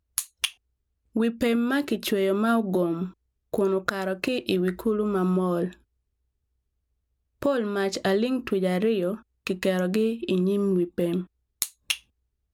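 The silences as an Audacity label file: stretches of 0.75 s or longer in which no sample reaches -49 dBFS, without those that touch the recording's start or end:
5.750000	7.420000	silence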